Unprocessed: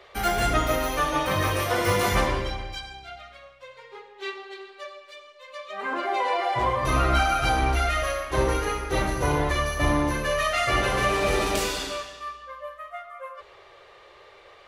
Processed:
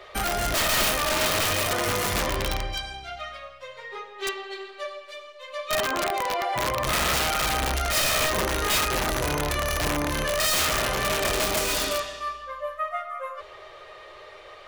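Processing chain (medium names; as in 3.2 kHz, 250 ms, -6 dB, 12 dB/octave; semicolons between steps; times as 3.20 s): in parallel at +1.5 dB: compressor with a negative ratio -30 dBFS, ratio -1; on the sum: feedback comb 620 Hz, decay 0.18 s, harmonics all, mix 80%; integer overflow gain 24.5 dB; trim +6.5 dB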